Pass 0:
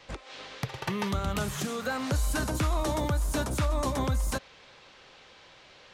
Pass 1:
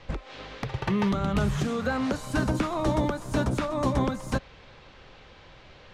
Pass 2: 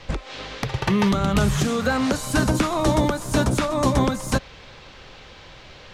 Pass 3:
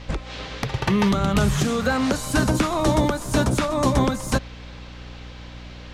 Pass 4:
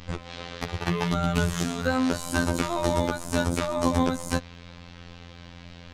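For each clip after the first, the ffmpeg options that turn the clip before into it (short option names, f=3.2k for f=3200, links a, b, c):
-af "aemphasis=mode=reproduction:type=bsi,afftfilt=real='re*lt(hypot(re,im),0.631)':imag='im*lt(hypot(re,im),0.631)':win_size=1024:overlap=0.75,volume=2.5dB"
-af "highshelf=f=4.3k:g=9.5,volume=5.5dB"
-af "aeval=exprs='val(0)+0.0126*(sin(2*PI*60*n/s)+sin(2*PI*2*60*n/s)/2+sin(2*PI*3*60*n/s)/3+sin(2*PI*4*60*n/s)/4+sin(2*PI*5*60*n/s)/5)':c=same"
-af "afftfilt=real='hypot(re,im)*cos(PI*b)':imag='0':win_size=2048:overlap=0.75,volume=-1dB"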